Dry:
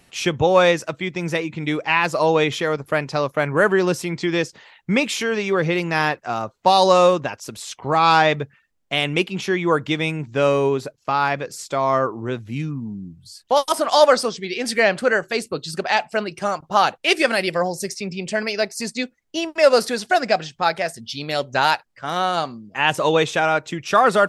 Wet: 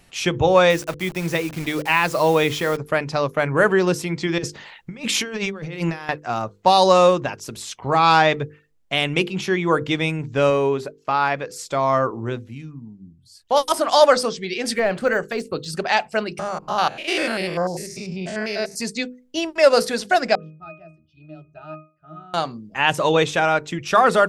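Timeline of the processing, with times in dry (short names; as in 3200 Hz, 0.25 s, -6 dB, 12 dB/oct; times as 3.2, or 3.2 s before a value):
0.7–2.77 requantised 6-bit, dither none
4.38–6.09 negative-ratio compressor -26 dBFS, ratio -0.5
10.5–11.56 tone controls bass -5 dB, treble -4 dB
12.25–13.59 dip -10 dB, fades 0.31 s
14.75–15.66 de-esser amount 85%
16.39–18.76 stepped spectrum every 0.1 s
20.35–22.34 octave resonator D#, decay 0.35 s
whole clip: low shelf 84 Hz +9 dB; notches 50/100/150/200/250/300/350/400/450/500 Hz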